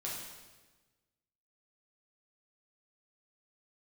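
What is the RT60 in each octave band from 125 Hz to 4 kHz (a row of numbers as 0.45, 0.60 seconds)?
1.6, 1.5, 1.3, 1.2, 1.2, 1.1 seconds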